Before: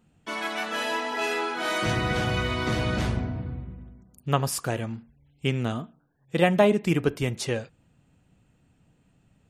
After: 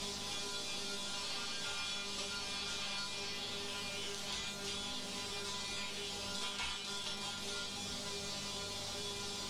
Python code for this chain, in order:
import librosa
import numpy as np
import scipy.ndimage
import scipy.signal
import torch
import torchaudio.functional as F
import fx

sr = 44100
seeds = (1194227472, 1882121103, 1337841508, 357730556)

p1 = fx.bin_compress(x, sr, power=0.2)
p2 = fx.level_steps(p1, sr, step_db=14)
p3 = p1 + (p2 * 10.0 ** (2.5 / 20.0))
p4 = fx.spec_gate(p3, sr, threshold_db=-25, keep='weak')
p5 = fx.quant_dither(p4, sr, seeds[0], bits=6, dither='triangular')
p6 = fx.peak_eq(p5, sr, hz=1800.0, db=-13.0, octaves=1.5)
p7 = fx.add_hum(p6, sr, base_hz=50, snr_db=16)
p8 = scipy.signal.sosfilt(scipy.signal.butter(2, 2800.0, 'lowpass', fs=sr, output='sos'), p7)
p9 = fx.low_shelf(p8, sr, hz=82.0, db=-10.0)
p10 = fx.comb_fb(p9, sr, f0_hz=200.0, decay_s=0.28, harmonics='all', damping=0.0, mix_pct=90)
p11 = fx.chorus_voices(p10, sr, voices=4, hz=0.24, base_ms=15, depth_ms=2.9, mix_pct=35)
p12 = p11 + fx.room_early_taps(p11, sr, ms=(32, 49), db=(-5.0, -6.5), dry=0)
p13 = fx.band_squash(p12, sr, depth_pct=100)
y = p13 * 10.0 ** (11.5 / 20.0)